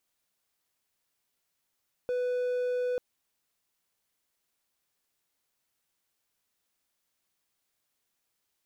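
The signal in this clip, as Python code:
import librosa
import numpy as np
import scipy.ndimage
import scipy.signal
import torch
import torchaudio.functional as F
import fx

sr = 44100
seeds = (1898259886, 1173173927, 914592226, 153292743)

y = 10.0 ** (-25.0 / 20.0) * (1.0 - 4.0 * np.abs(np.mod(496.0 * (np.arange(round(0.89 * sr)) / sr) + 0.25, 1.0) - 0.5))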